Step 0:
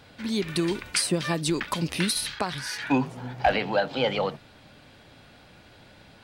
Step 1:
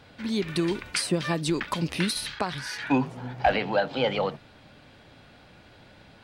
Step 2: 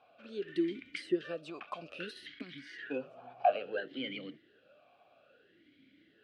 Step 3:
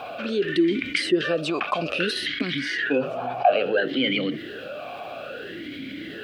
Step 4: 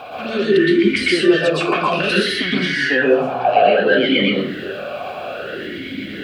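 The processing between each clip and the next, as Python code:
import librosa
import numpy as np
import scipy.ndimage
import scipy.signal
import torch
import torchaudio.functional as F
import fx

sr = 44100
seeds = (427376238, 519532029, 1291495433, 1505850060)

y1 = fx.high_shelf(x, sr, hz=6100.0, db=-7.0)
y2 = fx.vowel_sweep(y1, sr, vowels='a-i', hz=0.6)
y3 = fx.env_flatten(y2, sr, amount_pct=50)
y3 = y3 * 10.0 ** (8.0 / 20.0)
y4 = fx.rev_plate(y3, sr, seeds[0], rt60_s=0.52, hf_ratio=0.55, predelay_ms=105, drr_db=-5.5)
y4 = y4 * 10.0 ** (1.5 / 20.0)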